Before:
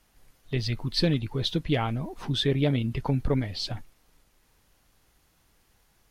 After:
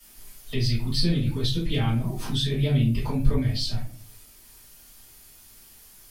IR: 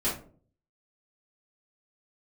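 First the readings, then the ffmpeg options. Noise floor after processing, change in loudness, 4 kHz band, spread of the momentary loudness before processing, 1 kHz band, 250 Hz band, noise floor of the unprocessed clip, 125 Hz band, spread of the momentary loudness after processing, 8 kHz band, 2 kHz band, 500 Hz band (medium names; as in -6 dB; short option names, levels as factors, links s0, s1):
-51 dBFS, +2.0 dB, +1.5 dB, 8 LU, -3.0 dB, +1.5 dB, -66 dBFS, +4.0 dB, 7 LU, +6.5 dB, -1.0 dB, -3.0 dB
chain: -filter_complex "[1:a]atrim=start_sample=2205[s0];[0:a][s0]afir=irnorm=-1:irlink=0,crystalizer=i=7:c=0,acrossover=split=170[s1][s2];[s2]acompressor=threshold=0.0251:ratio=2[s3];[s1][s3]amix=inputs=2:normalize=0,volume=0.531"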